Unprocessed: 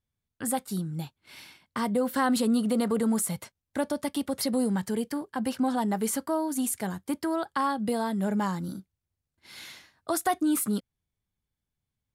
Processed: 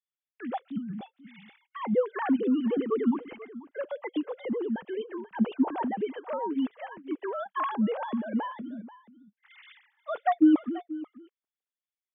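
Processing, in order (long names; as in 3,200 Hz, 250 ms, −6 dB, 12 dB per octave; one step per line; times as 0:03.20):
three sine waves on the formant tracks
single-tap delay 485 ms −17 dB
level −1 dB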